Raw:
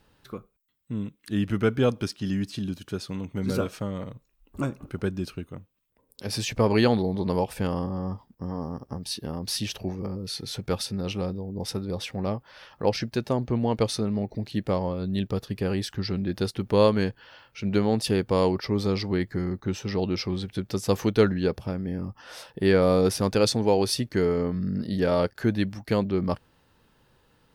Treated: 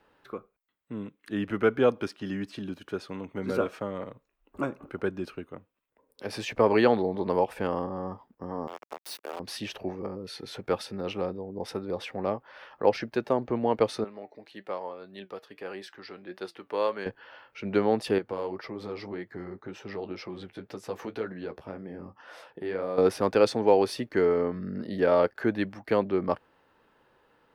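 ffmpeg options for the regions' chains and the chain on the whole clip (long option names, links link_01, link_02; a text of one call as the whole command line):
ffmpeg -i in.wav -filter_complex "[0:a]asettb=1/sr,asplit=3[link_01][link_02][link_03];[link_01]atrim=end=8.674[link_04];[link_02]atrim=start=8.67:end=9.4,asetpts=PTS-STARTPTS,afade=type=in:duration=0.004:curve=qsin,afade=type=out:start_time=0.726:duration=0.004:curve=qsin,highpass=frequency=410:width=0.5412,highpass=frequency=410:width=1.3066,acrusher=bits=5:mix=0:aa=0.5,aemphasis=mode=production:type=50kf[link_05];[link_03]atrim=start=9.396[link_06];[link_04][link_05]acrossfade=duration=0.004:curve1=hsin:curve2=qsin[link_07];[link_07][link_06]acrossfade=duration=0.004:curve1=qsin:curve2=hsin,asettb=1/sr,asplit=3[link_08][link_09][link_10];[link_08]atrim=end=14.044[link_11];[link_09]atrim=start=14.04:end=17.06,asetpts=PTS-STARTPTS,afade=type=in:duration=0.004:curve=qsin,afade=type=out:start_time=3.016:duration=0.004:curve=qsin,highpass=frequency=740:poles=1,flanger=delay=5:depth=2.1:regen=76:speed=1.7:shape=triangular[link_12];[link_10]atrim=start=17.056[link_13];[link_11][link_12]acrossfade=duration=0.004:curve1=hsin:curve2=qsin[link_14];[link_14][link_13]acrossfade=duration=0.004:curve1=qsin:curve2=hsin,asettb=1/sr,asplit=3[link_15][link_16][link_17];[link_15]atrim=end=18.184[link_18];[link_16]atrim=start=18.18:end=22.98,asetpts=PTS-STARTPTS,afade=type=in:duration=0.004:curve=qsin,afade=type=out:start_time=4.796:duration=0.004:curve=qsin,highpass=40,acompressor=threshold=-27dB:ratio=3:attack=3.2:release=140:knee=1:detection=peak,flanger=delay=5.8:depth=7.3:regen=-40:speed=1.9:shape=sinusoidal[link_19];[link_17]atrim=start=22.976[link_20];[link_18][link_19]acrossfade=duration=0.004:curve1=hsin:curve2=qsin[link_21];[link_21][link_20]acrossfade=duration=0.004:curve1=qsin:curve2=hsin,acrossover=split=280 2600:gain=0.178 1 0.2[link_22][link_23][link_24];[link_22][link_23][link_24]amix=inputs=3:normalize=0,deesser=0.75,volume=2.5dB" out.wav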